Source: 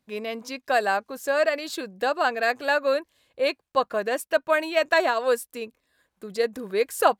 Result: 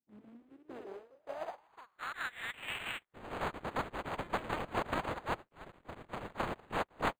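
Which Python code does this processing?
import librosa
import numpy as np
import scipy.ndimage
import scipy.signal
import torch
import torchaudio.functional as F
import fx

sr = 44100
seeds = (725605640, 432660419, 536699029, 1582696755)

y = fx.spec_flatten(x, sr, power=0.1)
y = fx.dereverb_blind(y, sr, rt60_s=1.4)
y = fx.filter_sweep_bandpass(y, sr, from_hz=230.0, to_hz=4800.0, start_s=0.33, end_s=3.39, q=4.4)
y = fx.echo_pitch(y, sr, ms=95, semitones=1, count=3, db_per_echo=-6.0)
y = np.interp(np.arange(len(y)), np.arange(len(y))[::8], y[::8])
y = F.gain(torch.from_numpy(y), -1.0).numpy()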